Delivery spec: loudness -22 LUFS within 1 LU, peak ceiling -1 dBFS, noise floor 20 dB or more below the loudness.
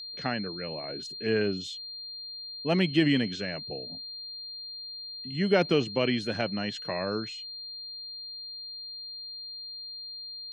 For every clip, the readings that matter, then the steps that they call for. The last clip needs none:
steady tone 4.2 kHz; tone level -38 dBFS; loudness -31.0 LUFS; peak level -10.0 dBFS; loudness target -22.0 LUFS
-> band-stop 4.2 kHz, Q 30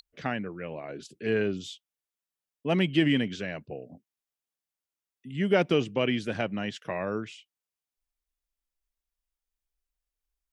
steady tone not found; loudness -29.0 LUFS; peak level -10.0 dBFS; loudness target -22.0 LUFS
-> trim +7 dB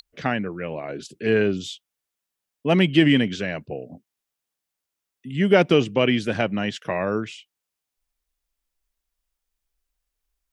loudness -22.0 LUFS; peak level -3.0 dBFS; noise floor -84 dBFS

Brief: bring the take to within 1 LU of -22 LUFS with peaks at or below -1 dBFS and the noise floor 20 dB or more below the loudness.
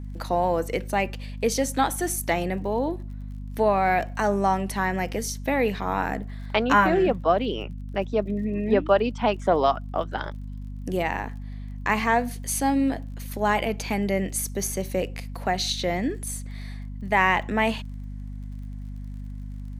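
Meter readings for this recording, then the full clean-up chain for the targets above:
tick rate 33 per s; hum 50 Hz; highest harmonic 250 Hz; hum level -32 dBFS; loudness -25.0 LUFS; peak level -4.5 dBFS; loudness target -22.0 LUFS
-> de-click; de-hum 50 Hz, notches 5; trim +3 dB

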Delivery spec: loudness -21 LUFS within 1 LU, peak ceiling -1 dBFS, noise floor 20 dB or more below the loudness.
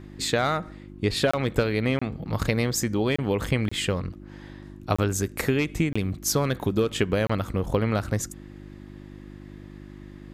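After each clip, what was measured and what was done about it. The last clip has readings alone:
dropouts 7; longest dropout 25 ms; hum 50 Hz; highest harmonic 350 Hz; hum level -43 dBFS; loudness -26.0 LUFS; peak level -8.0 dBFS; loudness target -21.0 LUFS
-> interpolate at 1.31/1.99/3.16/3.69/4.96/5.93/7.27 s, 25 ms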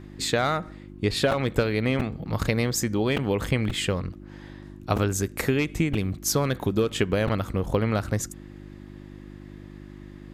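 dropouts 0; hum 50 Hz; highest harmonic 350 Hz; hum level -45 dBFS
-> de-hum 50 Hz, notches 7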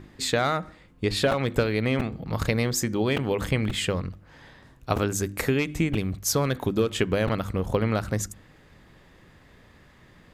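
hum not found; loudness -26.0 LUFS; peak level -8.0 dBFS; loudness target -21.0 LUFS
-> trim +5 dB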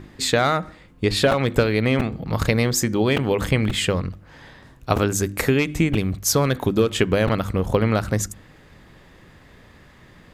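loudness -21.0 LUFS; peak level -3.0 dBFS; noise floor -50 dBFS

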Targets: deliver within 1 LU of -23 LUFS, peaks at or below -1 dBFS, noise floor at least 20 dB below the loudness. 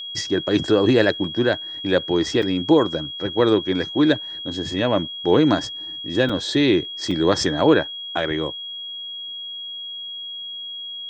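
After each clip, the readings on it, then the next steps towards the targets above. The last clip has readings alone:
dropouts 3; longest dropout 4.7 ms; steady tone 3.3 kHz; tone level -30 dBFS; loudness -21.5 LUFS; peak level -3.0 dBFS; loudness target -23.0 LUFS
-> interpolate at 2.42/6.29/7.11 s, 4.7 ms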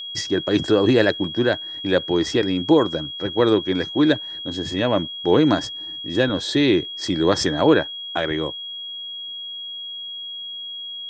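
dropouts 0; steady tone 3.3 kHz; tone level -30 dBFS
-> band-stop 3.3 kHz, Q 30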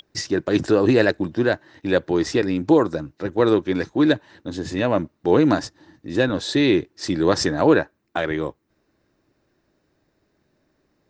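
steady tone not found; loudness -21.0 LUFS; peak level -3.5 dBFS; loudness target -23.0 LUFS
-> trim -2 dB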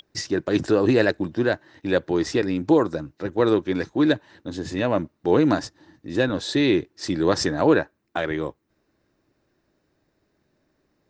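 loudness -23.0 LUFS; peak level -5.5 dBFS; noise floor -71 dBFS

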